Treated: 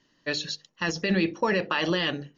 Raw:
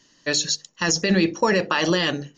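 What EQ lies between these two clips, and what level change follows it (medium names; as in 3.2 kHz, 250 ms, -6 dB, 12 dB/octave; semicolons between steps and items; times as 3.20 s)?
dynamic bell 3.1 kHz, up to +5 dB, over -35 dBFS, Q 0.94; distance through air 180 m; -5.0 dB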